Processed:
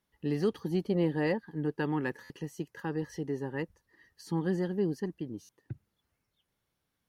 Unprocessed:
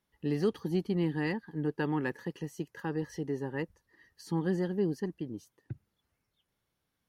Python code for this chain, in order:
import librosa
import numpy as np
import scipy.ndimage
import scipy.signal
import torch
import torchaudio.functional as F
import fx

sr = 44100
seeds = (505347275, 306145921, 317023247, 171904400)

y = fx.peak_eq(x, sr, hz=560.0, db=13.5, octaves=0.53, at=(0.85, 1.38))
y = fx.buffer_glitch(y, sr, at_s=(2.23, 5.42), block=512, repeats=5)